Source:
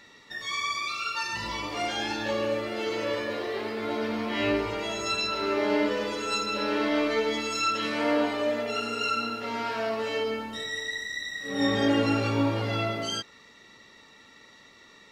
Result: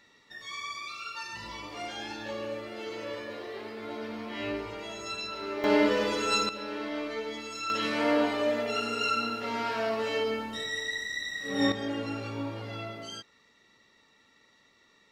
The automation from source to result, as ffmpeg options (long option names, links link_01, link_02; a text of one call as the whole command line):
ffmpeg -i in.wav -af "asetnsamples=nb_out_samples=441:pad=0,asendcmd='5.64 volume volume 2dB;6.49 volume volume -9dB;7.7 volume volume -0.5dB;11.72 volume volume -10dB',volume=-8dB" out.wav